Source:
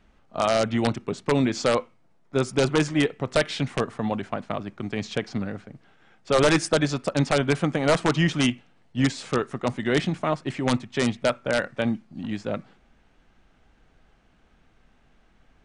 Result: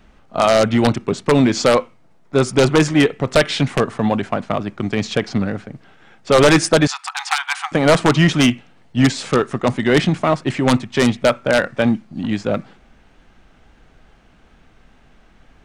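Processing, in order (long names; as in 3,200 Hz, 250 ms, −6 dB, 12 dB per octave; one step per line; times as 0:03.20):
tape wow and flutter 26 cents
in parallel at −3.5 dB: gain into a clipping stage and back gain 20.5 dB
0:06.87–0:07.72: on the sum: linear-phase brick-wall high-pass 730 Hz
level +5 dB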